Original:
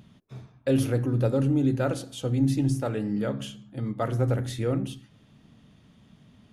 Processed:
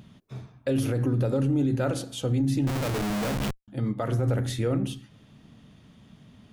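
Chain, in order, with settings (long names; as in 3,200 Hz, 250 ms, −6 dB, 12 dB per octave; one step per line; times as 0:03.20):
brickwall limiter −20.5 dBFS, peak gain reduction 8 dB
0:02.67–0:03.68: comparator with hysteresis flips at −35 dBFS
level +3 dB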